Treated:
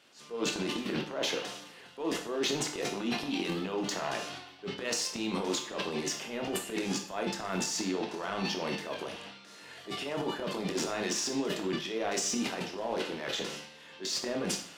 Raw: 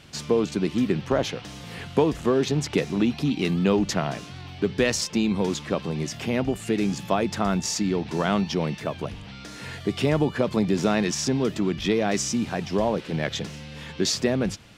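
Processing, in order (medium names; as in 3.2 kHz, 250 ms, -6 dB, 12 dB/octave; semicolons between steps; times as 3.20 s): gate -27 dBFS, range -14 dB; high-pass 370 Hz 12 dB/octave; band-stop 2.3 kHz, Q 23; reverse; compression, threshold -34 dBFS, peak gain reduction 16 dB; reverse; transient shaper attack -11 dB, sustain +11 dB; in parallel at -5 dB: saturation -35.5 dBFS, distortion -11 dB; on the sum: reverberation RT60 0.50 s, pre-delay 20 ms, DRR 3 dB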